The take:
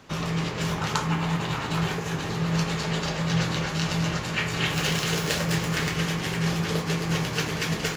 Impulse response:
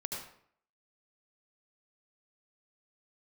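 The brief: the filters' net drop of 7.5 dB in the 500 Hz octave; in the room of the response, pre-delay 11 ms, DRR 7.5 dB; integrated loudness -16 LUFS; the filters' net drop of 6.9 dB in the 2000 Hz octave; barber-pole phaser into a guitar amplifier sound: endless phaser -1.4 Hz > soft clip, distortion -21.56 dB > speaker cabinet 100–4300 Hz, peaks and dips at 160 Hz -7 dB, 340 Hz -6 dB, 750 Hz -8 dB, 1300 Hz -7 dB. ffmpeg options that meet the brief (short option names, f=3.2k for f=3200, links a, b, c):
-filter_complex "[0:a]equalizer=f=500:t=o:g=-6,equalizer=f=2k:t=o:g=-7,asplit=2[a][b];[1:a]atrim=start_sample=2205,adelay=11[c];[b][c]afir=irnorm=-1:irlink=0,volume=-8.5dB[d];[a][d]amix=inputs=2:normalize=0,asplit=2[e][f];[f]afreqshift=-1.4[g];[e][g]amix=inputs=2:normalize=1,asoftclip=threshold=-20dB,highpass=100,equalizer=f=160:t=q:w=4:g=-7,equalizer=f=340:t=q:w=4:g=-6,equalizer=f=750:t=q:w=4:g=-8,equalizer=f=1.3k:t=q:w=4:g=-7,lowpass=f=4.3k:w=0.5412,lowpass=f=4.3k:w=1.3066,volume=20dB"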